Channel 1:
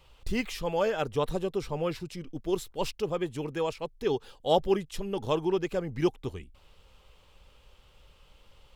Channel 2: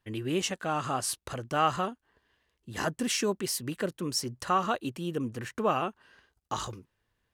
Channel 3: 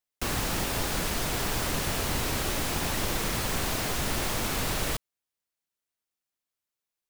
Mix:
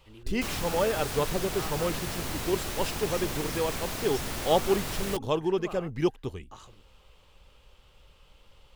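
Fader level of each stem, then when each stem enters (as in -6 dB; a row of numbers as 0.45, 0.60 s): +0.5, -15.5, -5.0 dB; 0.00, 0.00, 0.20 s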